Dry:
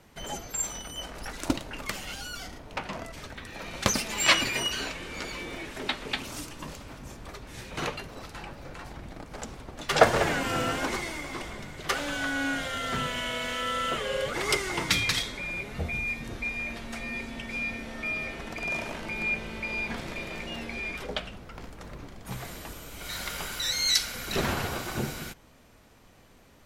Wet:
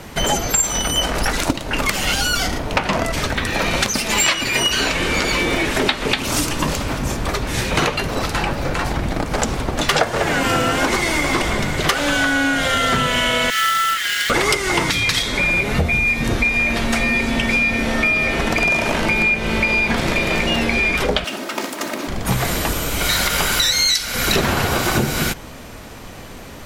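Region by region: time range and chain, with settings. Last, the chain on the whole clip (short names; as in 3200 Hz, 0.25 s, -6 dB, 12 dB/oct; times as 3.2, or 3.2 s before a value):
13.5–14.3 rippled Chebyshev high-pass 1300 Hz, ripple 6 dB + companded quantiser 4-bit
21.24–22.08 minimum comb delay 3.2 ms + HPF 200 Hz 24 dB/oct + high shelf 4900 Hz +7 dB
whole clip: compressor 12:1, threshold -35 dBFS; maximiser +22 dB; gain -1 dB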